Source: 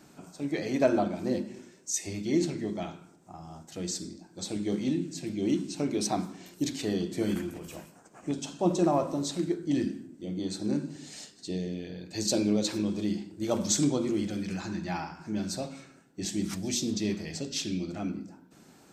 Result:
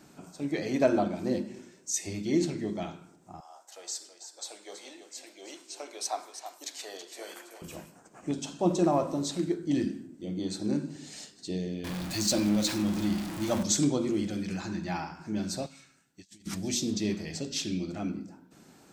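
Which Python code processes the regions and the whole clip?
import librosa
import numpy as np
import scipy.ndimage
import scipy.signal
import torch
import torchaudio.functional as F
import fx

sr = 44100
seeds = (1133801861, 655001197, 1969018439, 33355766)

y = fx.chain(x, sr, fx.highpass(hz=600.0, slope=24),
    fx.peak_eq(hz=2600.0, db=-4.5, octaves=1.7),
    fx.echo_single(ms=327, db=-10.0), at=(3.4, 7.62))
y = fx.chain(y, sr, fx.zero_step(step_db=-31.5),
    fx.peak_eq(hz=430.0, db=-14.5, octaves=0.32), at=(11.84, 13.63))
y = fx.chain(y, sr, fx.tone_stack(knobs='5-5-5'),
    fx.over_compress(threshold_db=-52.0, ratio=-0.5), at=(15.66, 16.47))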